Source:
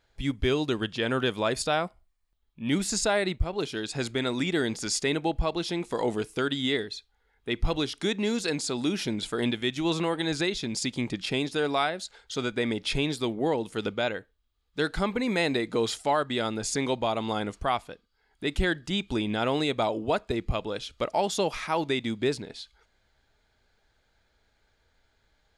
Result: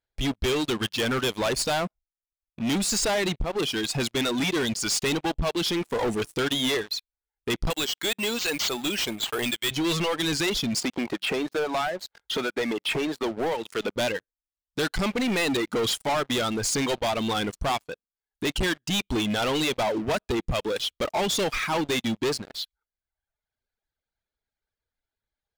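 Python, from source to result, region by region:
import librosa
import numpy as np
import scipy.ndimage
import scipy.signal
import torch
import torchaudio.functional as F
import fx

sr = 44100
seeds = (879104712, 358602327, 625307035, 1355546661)

y = fx.chain(x, sr, fx.highpass(hz=750.0, slope=6),
    fx.resample_bad(factor=4, down='none', up='hold'), at=(7.7, 9.71))
y = fx.chain(y, sr, fx.bandpass_q(hz=830.0, q=0.66),
    fx.band_squash(depth_pct=100), at=(10.8, 13.96))
y = fx.dereverb_blind(y, sr, rt60_s=1.2)
y = fx.dynamic_eq(y, sr, hz=3000.0, q=2.6, threshold_db=-49.0, ratio=4.0, max_db=7)
y = fx.leveller(y, sr, passes=5)
y = y * librosa.db_to_amplitude(-9.0)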